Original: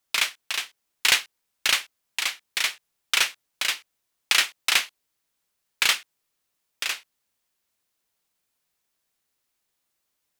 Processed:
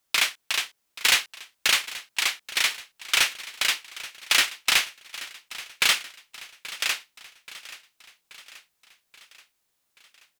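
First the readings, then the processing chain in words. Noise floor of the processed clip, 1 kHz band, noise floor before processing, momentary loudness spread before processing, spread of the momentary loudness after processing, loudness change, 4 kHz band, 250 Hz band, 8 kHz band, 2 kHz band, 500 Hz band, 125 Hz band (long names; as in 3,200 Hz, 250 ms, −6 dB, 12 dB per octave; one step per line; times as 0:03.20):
−75 dBFS, +1.0 dB, −78 dBFS, 10 LU, 20 LU, +0.5 dB, +1.0 dB, +3.0 dB, +1.0 dB, +1.0 dB, +1.5 dB, can't be measured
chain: soft clipping −14.5 dBFS, distortion −13 dB
on a send: repeating echo 830 ms, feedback 57%, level −17 dB
on the sum: level +3 dB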